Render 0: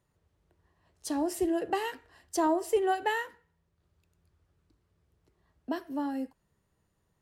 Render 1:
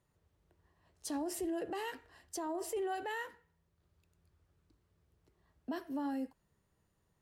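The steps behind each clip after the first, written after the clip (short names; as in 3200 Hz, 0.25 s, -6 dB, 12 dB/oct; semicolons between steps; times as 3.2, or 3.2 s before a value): limiter -29 dBFS, peak gain reduction 12 dB; gain -2 dB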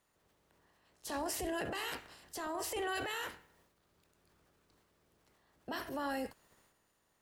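spectral limiter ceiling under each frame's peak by 18 dB; transient shaper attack -3 dB, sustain +8 dB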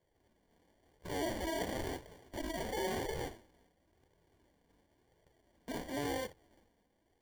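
sample-and-hold 34×; flange 0.96 Hz, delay 1.8 ms, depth 2.7 ms, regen -33%; gain +4.5 dB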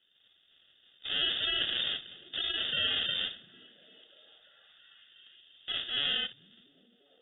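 inverted band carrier 3600 Hz; delay with a stepping band-pass 0.345 s, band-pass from 160 Hz, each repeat 0.7 oct, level -11 dB; gain +6 dB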